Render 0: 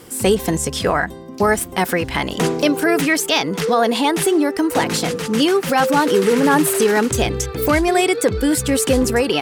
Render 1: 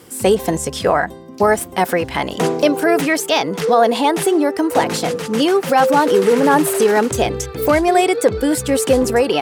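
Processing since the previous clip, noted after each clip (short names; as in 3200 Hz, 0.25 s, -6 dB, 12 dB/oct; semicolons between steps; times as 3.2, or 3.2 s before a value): HPF 60 Hz; dynamic EQ 650 Hz, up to +7 dB, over -29 dBFS, Q 0.96; gain -2 dB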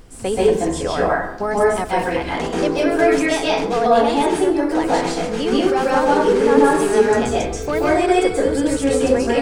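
polynomial smoothing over 9 samples; added noise brown -34 dBFS; plate-style reverb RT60 0.66 s, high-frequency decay 0.6×, pre-delay 0.12 s, DRR -6 dB; gain -9 dB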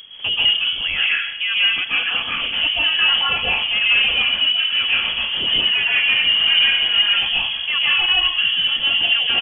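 soft clip -9 dBFS, distortion -17 dB; echo 0.881 s -19.5 dB; inverted band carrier 3300 Hz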